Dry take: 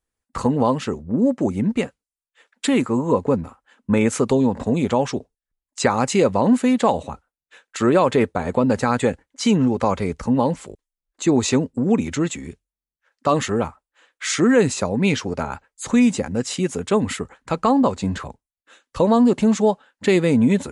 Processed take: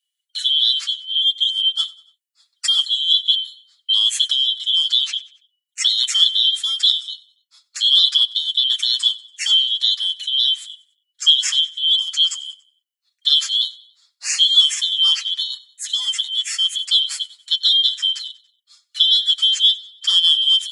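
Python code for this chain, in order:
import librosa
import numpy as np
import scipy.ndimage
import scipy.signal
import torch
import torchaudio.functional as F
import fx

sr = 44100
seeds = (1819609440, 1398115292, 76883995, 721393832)

y = fx.band_shuffle(x, sr, order='2413')
y = scipy.signal.sosfilt(scipy.signal.cheby1(3, 1.0, 1800.0, 'highpass', fs=sr, output='sos'), y)
y = fx.high_shelf(y, sr, hz=8400.0, db=4.0)
y = y + 0.89 * np.pad(y, (int(6.8 * sr / 1000.0), 0))[:len(y)]
y = fx.echo_feedback(y, sr, ms=94, feedback_pct=47, wet_db=-21.5)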